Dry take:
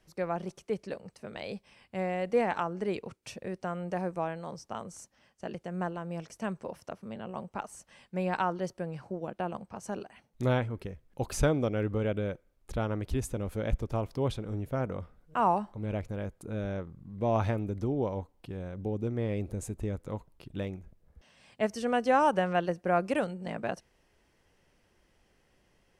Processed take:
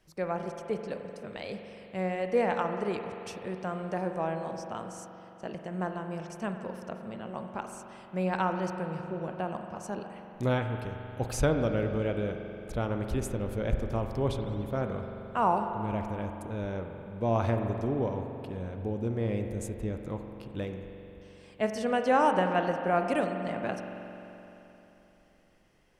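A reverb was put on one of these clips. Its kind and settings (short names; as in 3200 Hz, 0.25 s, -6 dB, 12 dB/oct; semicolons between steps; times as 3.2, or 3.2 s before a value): spring tank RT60 3.4 s, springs 43 ms, chirp 55 ms, DRR 5 dB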